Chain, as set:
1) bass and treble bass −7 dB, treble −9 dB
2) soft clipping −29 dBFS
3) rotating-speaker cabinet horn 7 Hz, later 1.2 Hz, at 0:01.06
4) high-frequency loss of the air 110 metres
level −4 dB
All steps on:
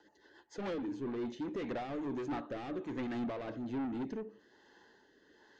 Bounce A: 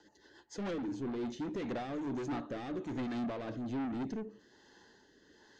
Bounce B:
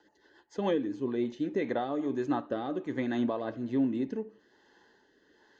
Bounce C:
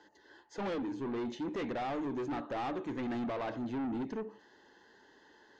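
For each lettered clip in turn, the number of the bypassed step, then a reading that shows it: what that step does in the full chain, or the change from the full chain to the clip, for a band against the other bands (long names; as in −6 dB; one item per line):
1, 125 Hz band +3.0 dB
2, distortion level −7 dB
3, 1 kHz band +3.5 dB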